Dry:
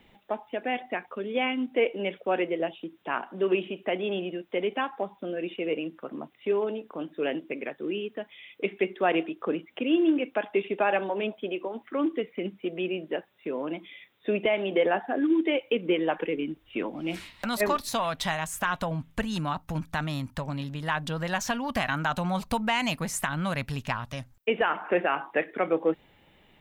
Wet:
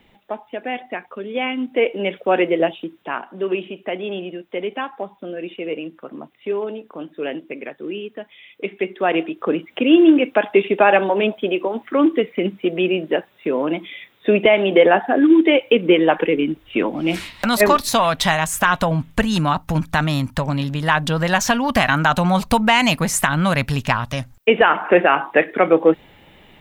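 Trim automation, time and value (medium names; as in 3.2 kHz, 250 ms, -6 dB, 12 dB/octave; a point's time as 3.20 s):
1.29 s +3.5 dB
2.64 s +11.5 dB
3.22 s +3 dB
8.69 s +3 dB
9.89 s +11.5 dB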